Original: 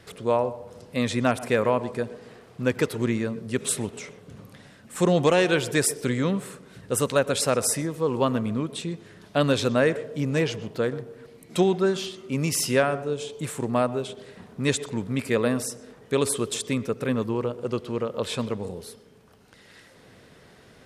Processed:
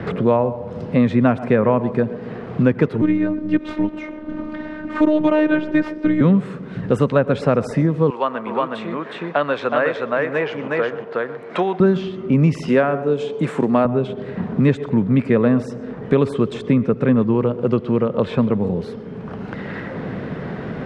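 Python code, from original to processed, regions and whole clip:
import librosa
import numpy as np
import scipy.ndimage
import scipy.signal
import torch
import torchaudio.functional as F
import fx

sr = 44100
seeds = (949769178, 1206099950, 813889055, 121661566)

y = fx.chain(x, sr, fx.median_filter(points=5),
    fx.robotise(hz=306.0), at=(3.01, 6.21))
y = fx.chain(y, sr, fx.highpass(hz=780.0, slope=12),
    fx.echo_single(ms=366, db=-3.5), at=(8.1, 11.8))
y = fx.chain(y, sr, fx.highpass(hz=230.0, slope=12),
    fx.high_shelf(hz=4500.0, db=10.0), at=(12.68, 13.85))
y = scipy.signal.sosfilt(scipy.signal.butter(2, 1800.0, 'lowpass', fs=sr, output='sos'), y)
y = fx.peak_eq(y, sr, hz=180.0, db=8.0, octaves=1.3)
y = fx.band_squash(y, sr, depth_pct=70)
y = y * librosa.db_to_amplitude(6.0)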